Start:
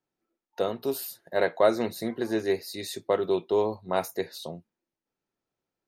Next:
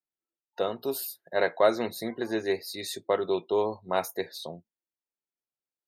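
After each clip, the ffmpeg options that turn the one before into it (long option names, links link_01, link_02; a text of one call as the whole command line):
ffmpeg -i in.wav -af "afftdn=noise_reduction=16:noise_floor=-50,lowshelf=frequency=460:gain=-6,volume=1.5dB" out.wav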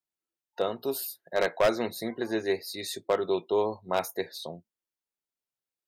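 ffmpeg -i in.wav -af "aeval=exprs='0.178*(abs(mod(val(0)/0.178+3,4)-2)-1)':channel_layout=same" out.wav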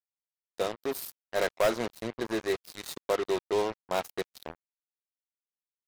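ffmpeg -i in.wav -af "acrusher=bits=4:mix=0:aa=0.5,volume=-2dB" out.wav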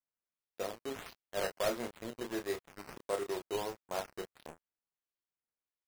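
ffmpeg -i in.wav -filter_complex "[0:a]asplit=2[link_01][link_02];[link_02]adelay=30,volume=-6dB[link_03];[link_01][link_03]amix=inputs=2:normalize=0,acrusher=samples=9:mix=1:aa=0.000001:lfo=1:lforange=9:lforate=1.5,volume=-8.5dB" out.wav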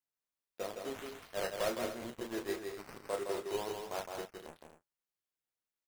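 ffmpeg -i in.wav -af "flanger=delay=0.9:depth=8:regen=-77:speed=0.48:shape=triangular,aecho=1:1:163.3|242:0.562|0.282,volume=2.5dB" out.wav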